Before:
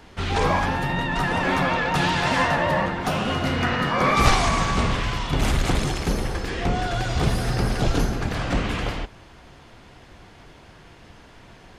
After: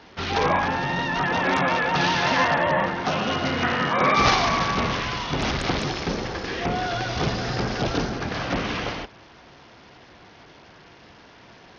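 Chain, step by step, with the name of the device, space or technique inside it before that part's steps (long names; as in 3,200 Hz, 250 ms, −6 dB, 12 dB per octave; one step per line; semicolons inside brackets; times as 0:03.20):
Bluetooth headset (high-pass filter 200 Hz 6 dB per octave; downsampling to 16,000 Hz; level +1 dB; SBC 64 kbit/s 48,000 Hz)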